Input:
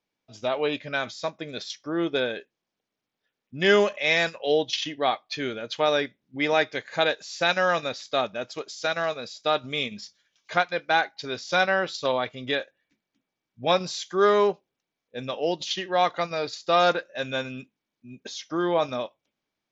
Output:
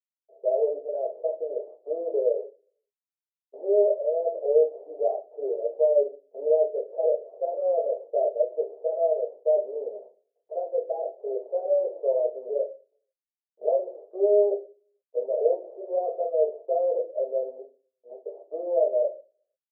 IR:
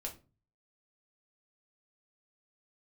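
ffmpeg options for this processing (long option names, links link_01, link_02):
-filter_complex "[0:a]aeval=exprs='(tanh(28.2*val(0)+0.3)-tanh(0.3))/28.2':channel_layout=same,dynaudnorm=framelen=200:gausssize=3:maxgain=13dB,aresample=16000,acrusher=bits=5:dc=4:mix=0:aa=0.000001,aresample=44100,asuperpass=centerf=520:order=8:qfactor=1.9[link_01];[1:a]atrim=start_sample=2205[link_02];[link_01][link_02]afir=irnorm=-1:irlink=0,volume=-1.5dB"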